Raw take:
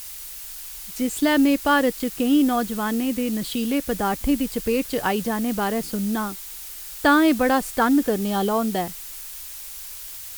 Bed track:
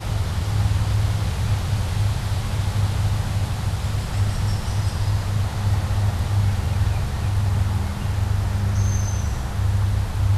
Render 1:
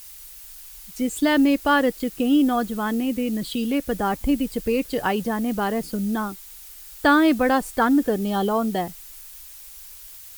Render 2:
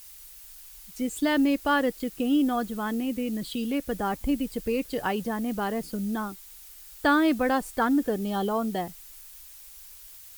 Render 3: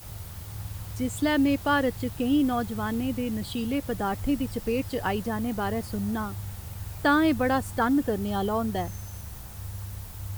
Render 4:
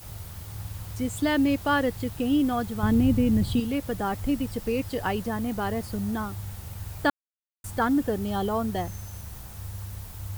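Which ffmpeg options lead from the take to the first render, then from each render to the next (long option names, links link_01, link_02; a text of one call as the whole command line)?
ffmpeg -i in.wav -af "afftdn=noise_reduction=7:noise_floor=-37" out.wav
ffmpeg -i in.wav -af "volume=-5dB" out.wav
ffmpeg -i in.wav -i bed.wav -filter_complex "[1:a]volume=-17dB[link_01];[0:a][link_01]amix=inputs=2:normalize=0" out.wav
ffmpeg -i in.wav -filter_complex "[0:a]asettb=1/sr,asplit=3[link_01][link_02][link_03];[link_01]atrim=end=2.834[link_04];[link_02]atrim=start=2.83:end=3.6,asetpts=PTS-STARTPTS,afade=type=in:duration=0.004:curve=qsin,afade=type=out:start_time=0.766:duration=0.004:curve=qsin,lowshelf=frequency=330:gain=12[link_05];[link_03]atrim=start=3.596[link_06];[link_04][link_05]acrossfade=duration=0.004:curve1=hsin:curve2=qsin[link_07];[link_07][link_06]acrossfade=duration=0.004:curve1=qsin:curve2=hsin,asplit=3[link_08][link_09][link_10];[link_08]atrim=end=7.1,asetpts=PTS-STARTPTS,afade=type=out:start_time=7.096:duration=0.004:curve=hsin[link_11];[link_09]atrim=start=7.1:end=7.64,asetpts=PTS-STARTPTS,volume=0[link_12];[link_10]atrim=start=7.64,asetpts=PTS-STARTPTS,afade=type=in:duration=0.004:curve=hsin[link_13];[link_11][link_12][link_13]concat=n=3:v=0:a=1" out.wav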